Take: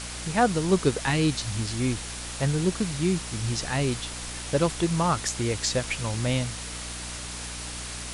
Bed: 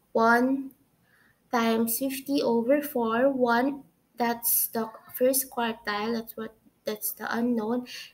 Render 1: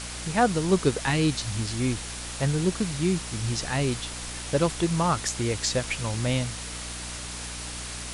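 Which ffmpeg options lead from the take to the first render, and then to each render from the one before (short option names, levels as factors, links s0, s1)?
-af anull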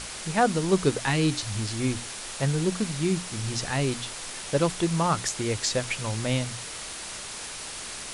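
-af "bandreject=f=60:t=h:w=6,bandreject=f=120:t=h:w=6,bandreject=f=180:t=h:w=6,bandreject=f=240:t=h:w=6,bandreject=f=300:t=h:w=6"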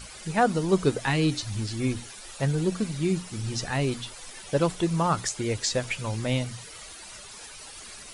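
-af "afftdn=nr=12:nf=-38"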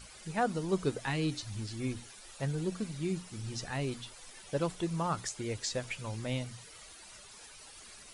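-af "volume=0.376"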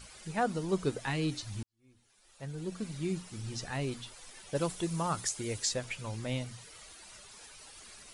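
-filter_complex "[0:a]asettb=1/sr,asplit=3[s0][s1][s2];[s0]atrim=end=4.554[s3];[s1]atrim=start=4.55:end=5.74,asetpts=PTS-STARTPTS,afade=t=in:d=0.004:c=qsin,afade=t=out:st=1.186:d=0.004:c=qsin,highshelf=f=7200:g=11.5[s4];[s2]atrim=start=5.736[s5];[s3][s4]acrossfade=d=0.004:c1=hsin:c2=qsin[s6];[s6][s5]acrossfade=d=0.004:c1=qsin:c2=hsin,asplit=2[s7][s8];[s7]atrim=end=1.63,asetpts=PTS-STARTPTS,afade=t=out:st=1.626:d=0.004:c=hsin[s9];[s8]atrim=start=1.63,asetpts=PTS-STARTPTS,afade=t=in:d=1.3:c=qua[s10];[s9][s10]concat=n=2:v=0:a=1"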